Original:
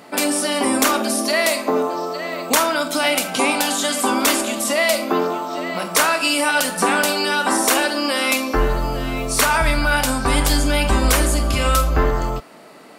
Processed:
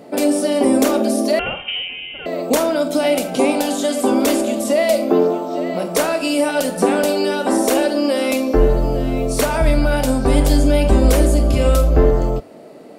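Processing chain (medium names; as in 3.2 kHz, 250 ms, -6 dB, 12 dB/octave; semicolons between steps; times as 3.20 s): 1.39–2.26 s: frequency inversion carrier 3.4 kHz; resonant low shelf 790 Hz +10 dB, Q 1.5; de-hum 97.12 Hz, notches 2; trim -5.5 dB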